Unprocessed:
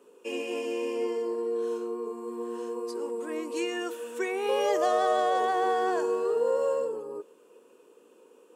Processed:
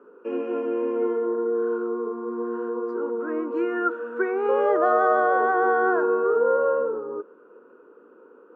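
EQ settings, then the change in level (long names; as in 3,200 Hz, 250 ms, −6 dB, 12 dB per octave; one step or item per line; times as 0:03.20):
low-pass with resonance 1,400 Hz, resonance Q 11
parametric band 280 Hz +11 dB 2.5 octaves
−4.0 dB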